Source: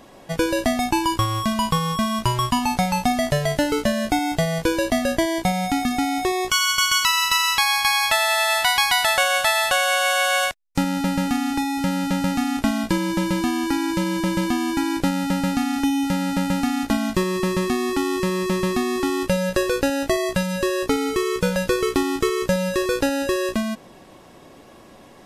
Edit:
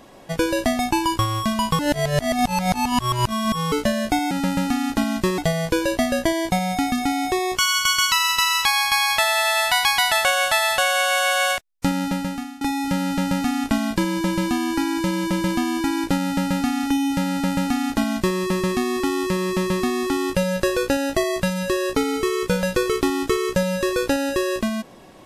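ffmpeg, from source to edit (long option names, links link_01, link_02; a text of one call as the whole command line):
ffmpeg -i in.wav -filter_complex "[0:a]asplit=6[link_01][link_02][link_03][link_04][link_05][link_06];[link_01]atrim=end=1.792[link_07];[link_02]atrim=start=1.788:end=3.722,asetpts=PTS-STARTPTS,areverse[link_08];[link_03]atrim=start=3.718:end=4.312[link_09];[link_04]atrim=start=16.238:end=17.312[link_10];[link_05]atrim=start=4.308:end=11.54,asetpts=PTS-STARTPTS,afade=type=out:start_time=6.632:duration=0.6:silence=0.0891251[link_11];[link_06]atrim=start=11.54,asetpts=PTS-STARTPTS,afade=type=in:duration=0.004:curve=hsin:silence=0.0891251[link_12];[link_07][link_08]acrossfade=duration=0.004:curve1=hsin:curve2=hsin[link_13];[link_13][link_09]acrossfade=duration=0.004:curve1=hsin:curve2=hsin[link_14];[link_14][link_10]acrossfade=duration=0.004:curve1=hsin:curve2=hsin[link_15];[link_11][link_12]concat=n=2:v=0:a=1[link_16];[link_15][link_16]acrossfade=duration=0.004:curve1=hsin:curve2=hsin" out.wav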